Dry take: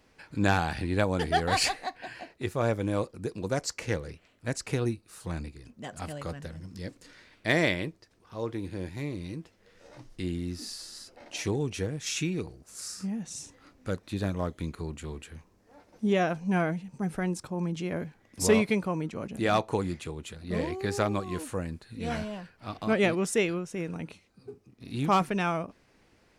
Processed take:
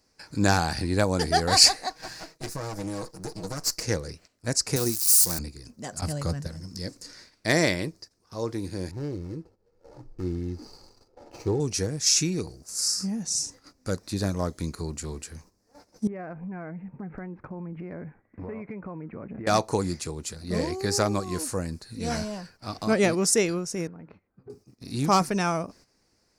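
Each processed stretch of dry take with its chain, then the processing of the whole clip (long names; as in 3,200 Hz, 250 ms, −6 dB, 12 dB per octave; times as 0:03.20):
0:01.90–0:03.83: lower of the sound and its delayed copy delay 6.3 ms + downward compressor 12 to 1, threshold −31 dBFS
0:04.76–0:05.39: spike at every zero crossing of −30 dBFS + high-pass filter 160 Hz 6 dB per octave + high-shelf EQ 5,100 Hz +7 dB
0:06.01–0:06.47: noise gate with hold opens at −30 dBFS, closes at −36 dBFS + parametric band 110 Hz +9 dB 1.8 octaves
0:08.91–0:11.60: running median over 25 samples + low-pass filter 2,200 Hz 6 dB per octave + comb filter 2.3 ms, depth 39%
0:16.07–0:19.47: one scale factor per block 7 bits + Butterworth low-pass 2,300 Hz 48 dB per octave + downward compressor 12 to 1, threshold −36 dBFS
0:23.87–0:24.50: one scale factor per block 5 bits + low-pass filter 1,900 Hz 24 dB per octave + downward compressor 12 to 1, threshold −43 dBFS
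whole clip: noise gate −55 dBFS, range −10 dB; high shelf with overshoot 4,000 Hz +7 dB, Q 3; level +3 dB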